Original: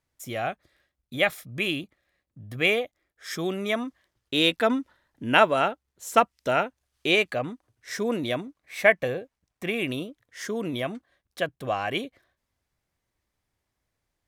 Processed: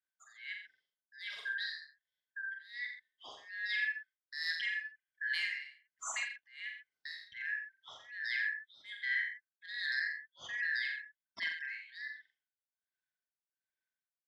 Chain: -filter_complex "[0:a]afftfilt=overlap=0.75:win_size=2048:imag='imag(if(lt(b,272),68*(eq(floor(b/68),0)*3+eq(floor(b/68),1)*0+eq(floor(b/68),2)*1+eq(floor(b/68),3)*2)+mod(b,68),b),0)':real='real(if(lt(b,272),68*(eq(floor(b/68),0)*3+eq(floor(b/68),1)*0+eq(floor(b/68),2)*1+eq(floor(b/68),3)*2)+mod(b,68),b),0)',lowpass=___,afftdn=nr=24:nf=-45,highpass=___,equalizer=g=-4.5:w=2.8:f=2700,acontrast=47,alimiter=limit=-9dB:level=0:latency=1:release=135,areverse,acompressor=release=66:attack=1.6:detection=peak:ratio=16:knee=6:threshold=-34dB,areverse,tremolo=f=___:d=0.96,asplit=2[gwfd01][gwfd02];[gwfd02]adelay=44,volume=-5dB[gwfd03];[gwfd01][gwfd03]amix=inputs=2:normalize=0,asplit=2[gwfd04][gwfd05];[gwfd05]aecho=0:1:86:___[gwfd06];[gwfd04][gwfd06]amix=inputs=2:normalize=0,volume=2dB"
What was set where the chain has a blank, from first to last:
5400, 41, 1.3, 0.398